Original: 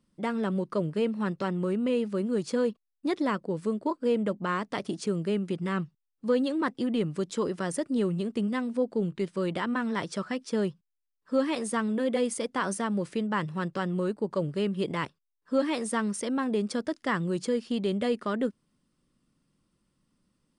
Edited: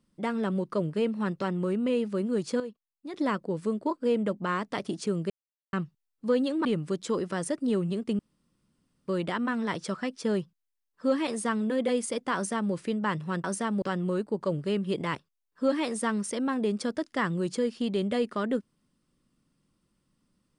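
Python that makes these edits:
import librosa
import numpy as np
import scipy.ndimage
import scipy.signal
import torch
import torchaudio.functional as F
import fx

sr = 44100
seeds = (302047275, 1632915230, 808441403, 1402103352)

y = fx.edit(x, sr, fx.clip_gain(start_s=2.6, length_s=0.54, db=-11.0),
    fx.silence(start_s=5.3, length_s=0.43),
    fx.cut(start_s=6.65, length_s=0.28),
    fx.room_tone_fill(start_s=8.47, length_s=0.89),
    fx.duplicate(start_s=12.63, length_s=0.38, to_s=13.72), tone=tone)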